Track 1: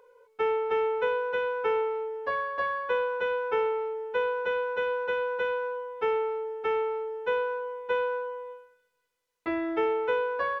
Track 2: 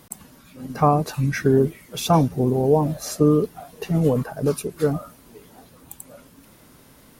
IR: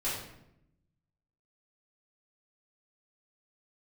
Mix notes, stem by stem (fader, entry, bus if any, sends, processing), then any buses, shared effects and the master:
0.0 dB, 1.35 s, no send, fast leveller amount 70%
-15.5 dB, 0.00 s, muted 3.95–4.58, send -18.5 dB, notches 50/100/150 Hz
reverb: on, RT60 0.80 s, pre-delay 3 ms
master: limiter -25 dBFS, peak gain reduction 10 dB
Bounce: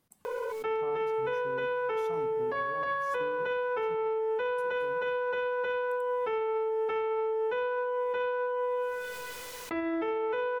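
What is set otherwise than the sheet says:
stem 1: entry 1.35 s -> 0.25 s; stem 2 -15.5 dB -> -24.0 dB

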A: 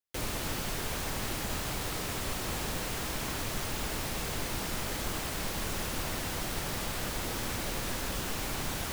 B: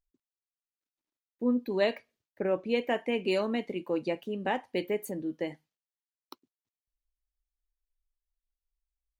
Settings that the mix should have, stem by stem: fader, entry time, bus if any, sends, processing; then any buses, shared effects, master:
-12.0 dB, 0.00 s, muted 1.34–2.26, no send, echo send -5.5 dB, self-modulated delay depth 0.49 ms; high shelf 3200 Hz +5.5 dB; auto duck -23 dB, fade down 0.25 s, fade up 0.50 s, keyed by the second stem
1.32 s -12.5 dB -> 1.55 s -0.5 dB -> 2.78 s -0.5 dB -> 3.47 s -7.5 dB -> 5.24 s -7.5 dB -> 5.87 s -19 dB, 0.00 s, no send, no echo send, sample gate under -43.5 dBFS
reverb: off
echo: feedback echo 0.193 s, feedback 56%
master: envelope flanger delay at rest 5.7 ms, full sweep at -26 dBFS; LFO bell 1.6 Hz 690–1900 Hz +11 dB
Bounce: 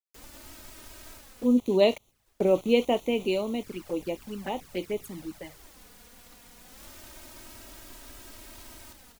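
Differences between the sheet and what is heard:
stem B -12.5 dB -> -4.5 dB; master: missing LFO bell 1.6 Hz 690–1900 Hz +11 dB

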